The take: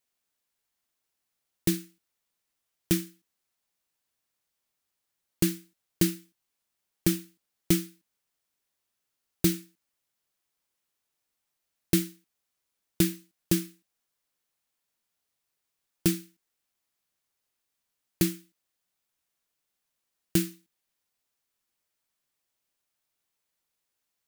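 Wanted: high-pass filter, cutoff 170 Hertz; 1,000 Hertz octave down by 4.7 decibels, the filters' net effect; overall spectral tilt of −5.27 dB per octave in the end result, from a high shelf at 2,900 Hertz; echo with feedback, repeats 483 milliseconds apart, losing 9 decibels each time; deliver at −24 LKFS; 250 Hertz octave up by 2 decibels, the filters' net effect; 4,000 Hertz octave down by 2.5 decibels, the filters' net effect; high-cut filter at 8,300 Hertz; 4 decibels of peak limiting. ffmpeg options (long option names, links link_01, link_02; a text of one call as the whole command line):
ffmpeg -i in.wav -af "highpass=170,lowpass=8300,equalizer=frequency=250:width_type=o:gain=6,equalizer=frequency=1000:width_type=o:gain=-7.5,highshelf=frequency=2900:gain=3.5,equalizer=frequency=4000:width_type=o:gain=-5.5,alimiter=limit=-12.5dB:level=0:latency=1,aecho=1:1:483|966|1449|1932:0.355|0.124|0.0435|0.0152,volume=9dB" out.wav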